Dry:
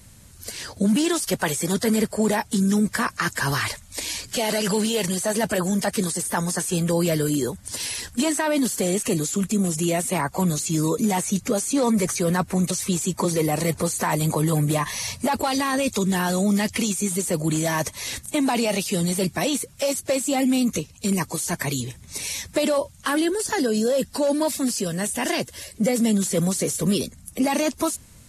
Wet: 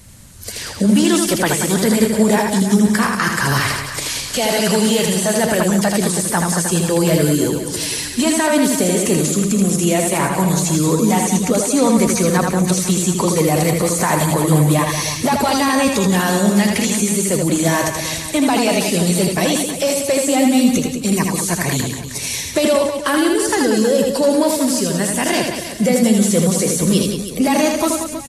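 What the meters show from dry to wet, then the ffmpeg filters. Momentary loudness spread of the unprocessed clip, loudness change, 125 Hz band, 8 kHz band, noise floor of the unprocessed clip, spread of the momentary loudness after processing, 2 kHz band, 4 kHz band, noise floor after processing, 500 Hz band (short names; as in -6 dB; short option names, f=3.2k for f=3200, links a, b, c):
6 LU, +7.0 dB, +7.0 dB, +7.0 dB, -48 dBFS, 5 LU, +7.0 dB, +7.0 dB, -28 dBFS, +7.0 dB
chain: -filter_complex "[0:a]asplit=2[a][b];[b]aecho=0:1:80|184|319.2|495|723.4:0.631|0.398|0.251|0.158|0.1[c];[a][c]amix=inputs=2:normalize=0,volume=5dB"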